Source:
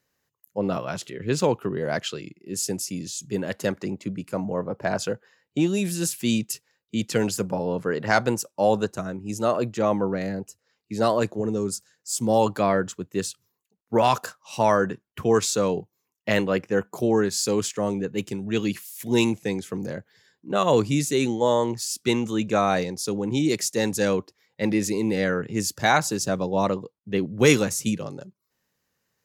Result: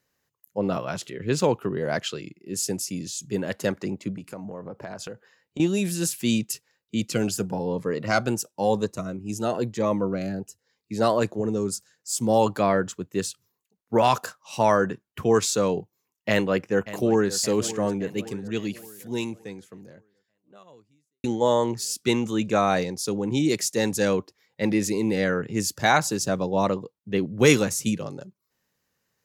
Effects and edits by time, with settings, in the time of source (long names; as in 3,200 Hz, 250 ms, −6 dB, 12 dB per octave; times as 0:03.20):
0:04.17–0:05.60: downward compressor 10 to 1, threshold −32 dBFS
0:07.00–0:10.94: phaser whose notches keep moving one way rising 1 Hz
0:16.29–0:17.33: delay throw 570 ms, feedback 70%, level −15 dB
0:17.89–0:21.24: fade out quadratic